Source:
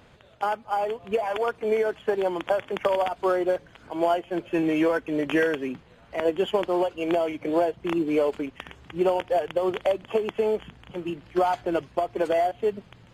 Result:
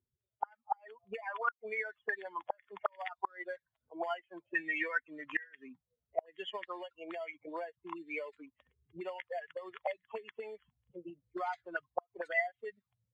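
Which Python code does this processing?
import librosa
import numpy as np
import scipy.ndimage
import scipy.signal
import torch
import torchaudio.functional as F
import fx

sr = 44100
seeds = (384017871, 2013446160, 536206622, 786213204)

y = fx.bin_expand(x, sr, power=2.0)
y = fx.auto_wah(y, sr, base_hz=370.0, top_hz=1900.0, q=8.7, full_db=-26.5, direction='up')
y = fx.gate_flip(y, sr, shuts_db=-33.0, range_db=-29)
y = y * librosa.db_to_amplitude(14.0)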